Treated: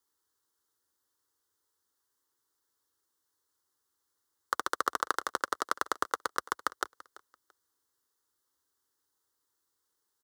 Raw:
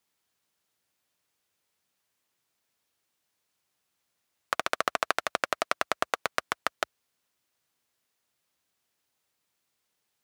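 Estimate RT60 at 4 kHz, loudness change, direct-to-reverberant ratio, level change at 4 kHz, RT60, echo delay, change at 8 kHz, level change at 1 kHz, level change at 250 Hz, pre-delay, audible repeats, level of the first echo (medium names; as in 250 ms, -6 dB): no reverb, -3.0 dB, no reverb, -6.0 dB, no reverb, 337 ms, -1.0 dB, -1.0 dB, -2.0 dB, no reverb, 2, -20.0 dB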